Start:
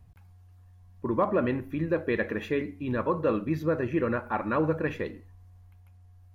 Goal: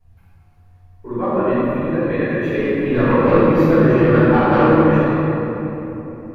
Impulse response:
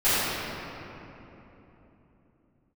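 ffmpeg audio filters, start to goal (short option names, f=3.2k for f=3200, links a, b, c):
-filter_complex "[0:a]asettb=1/sr,asplit=3[a][b][c];[a]atrim=end=2.574[d];[b]atrim=start=2.57:end=4.72,asetpts=PTS-STARTPTS,afade=t=in:d=0.004:c=qsin,afade=t=out:st=2.146:d=0.004:c=qsin,aeval=exprs='0.178*sin(PI/2*1.58*val(0)/0.178)':c=same[e];[c]atrim=start=4.716[f];[d][e]acrossfade=d=0.004:c1=hsin:c2=qsin[g];[g][f]acrossfade=d=0.004:c1=qsin:c2=hsin[h];[1:a]atrim=start_sample=2205,asetrate=41895,aresample=44100[i];[h][i]afir=irnorm=-1:irlink=0,volume=-11.5dB"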